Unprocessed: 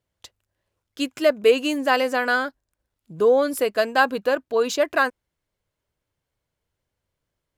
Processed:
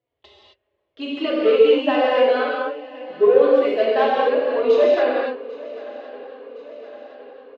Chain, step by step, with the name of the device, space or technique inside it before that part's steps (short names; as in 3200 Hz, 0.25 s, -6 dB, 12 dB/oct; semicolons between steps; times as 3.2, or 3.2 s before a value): bell 140 Hz -5.5 dB 0.45 oct; barber-pole flanger into a guitar amplifier (endless flanger 3.6 ms -2.4 Hz; soft clip -18.5 dBFS, distortion -11 dB; speaker cabinet 78–3400 Hz, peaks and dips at 190 Hz -10 dB, 410 Hz +9 dB, 630 Hz +6 dB, 1500 Hz -7 dB); swung echo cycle 1.063 s, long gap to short 3:1, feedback 59%, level -20 dB; non-linear reverb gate 0.29 s flat, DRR -5.5 dB